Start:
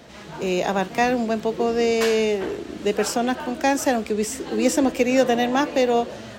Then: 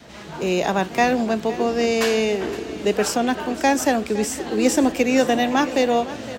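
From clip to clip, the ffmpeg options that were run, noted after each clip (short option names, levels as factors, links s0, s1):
-af "adynamicequalizer=threshold=0.0251:dfrequency=500:dqfactor=2.5:tfrequency=500:tqfactor=2.5:attack=5:release=100:ratio=0.375:range=2:mode=cutabove:tftype=bell,aecho=1:1:513|1026|1539|2052:0.158|0.0745|0.035|0.0165,volume=1.26"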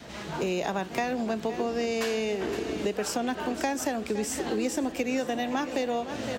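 -af "acompressor=threshold=0.0501:ratio=6"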